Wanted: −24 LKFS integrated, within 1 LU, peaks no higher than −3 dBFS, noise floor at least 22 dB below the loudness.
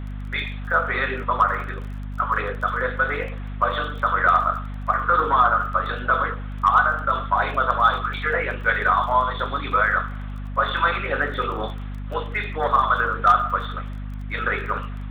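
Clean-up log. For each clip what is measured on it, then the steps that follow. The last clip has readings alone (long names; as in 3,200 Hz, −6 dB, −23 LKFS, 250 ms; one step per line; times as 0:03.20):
crackle rate 21 per second; mains hum 50 Hz; hum harmonics up to 250 Hz; level of the hum −29 dBFS; integrated loudness −22.0 LKFS; sample peak −6.5 dBFS; target loudness −24.0 LKFS
→ click removal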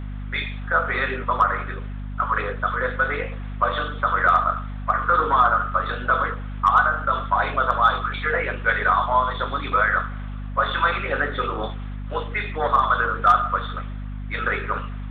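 crackle rate 0.066 per second; mains hum 50 Hz; hum harmonics up to 250 Hz; level of the hum −29 dBFS
→ mains-hum notches 50/100/150/200/250 Hz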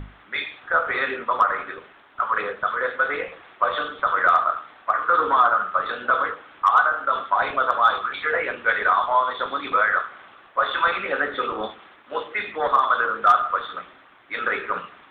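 mains hum none found; integrated loudness −22.0 LKFS; sample peak −7.0 dBFS; target loudness −24.0 LKFS
→ level −2 dB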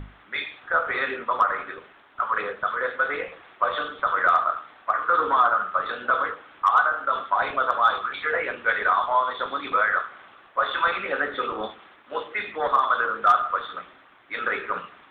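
integrated loudness −24.0 LKFS; sample peak −9.0 dBFS; background noise floor −53 dBFS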